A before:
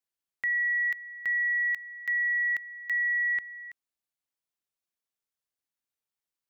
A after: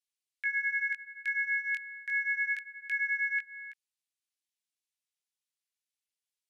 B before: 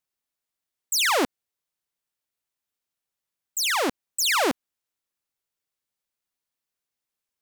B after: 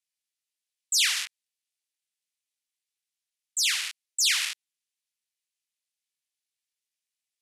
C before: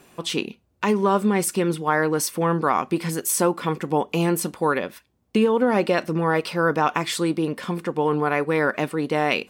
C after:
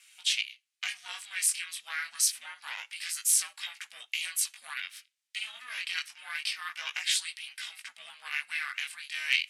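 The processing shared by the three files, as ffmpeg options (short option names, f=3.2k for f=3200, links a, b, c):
-af "acontrast=85,flanger=delay=16:depth=7.3:speed=0.27,asuperpass=centerf=5500:order=8:qfactor=0.56,asoftclip=type=hard:threshold=-10.5dB,aeval=exprs='val(0)*sin(2*PI*260*n/s)':c=same"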